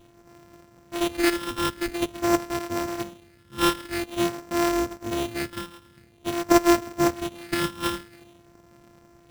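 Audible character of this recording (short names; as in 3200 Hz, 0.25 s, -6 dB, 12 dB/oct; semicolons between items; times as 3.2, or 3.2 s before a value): a buzz of ramps at a fixed pitch in blocks of 128 samples; phasing stages 8, 0.48 Hz, lowest notch 640–4900 Hz; aliases and images of a low sample rate 6700 Hz, jitter 0%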